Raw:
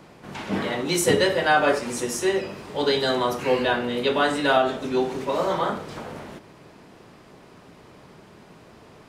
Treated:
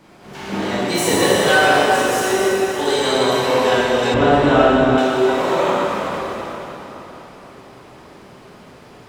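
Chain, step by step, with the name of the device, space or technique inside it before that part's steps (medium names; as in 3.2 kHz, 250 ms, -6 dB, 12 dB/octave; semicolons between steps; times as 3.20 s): shimmer-style reverb (harmony voices +12 st -9 dB; reverberation RT60 3.9 s, pre-delay 18 ms, DRR -7.5 dB); 4.14–4.98 s: RIAA curve playback; trim -2.5 dB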